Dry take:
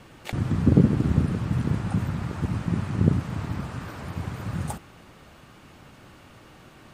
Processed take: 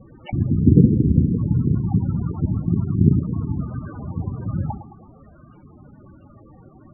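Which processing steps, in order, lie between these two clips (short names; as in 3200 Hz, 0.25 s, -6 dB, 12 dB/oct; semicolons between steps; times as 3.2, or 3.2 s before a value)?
hard clip -8.5 dBFS, distortion -22 dB; tape echo 0.109 s, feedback 60%, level -10.5 dB, low-pass 2100 Hz; loudest bins only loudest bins 16; gain +5.5 dB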